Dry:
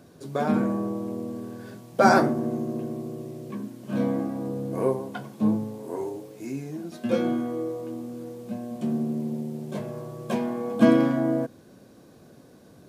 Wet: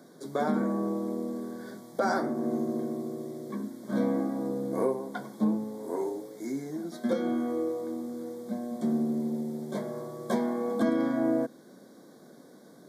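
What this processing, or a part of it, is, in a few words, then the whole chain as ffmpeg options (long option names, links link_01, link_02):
PA system with an anti-feedback notch: -af "highpass=frequency=180:width=0.5412,highpass=frequency=180:width=1.3066,asuperstop=centerf=2700:order=12:qfactor=2.8,alimiter=limit=-17dB:level=0:latency=1:release=376"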